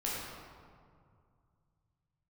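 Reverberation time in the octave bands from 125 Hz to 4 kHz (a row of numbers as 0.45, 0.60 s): 3.8, 2.6, 2.2, 2.2, 1.5, 1.1 s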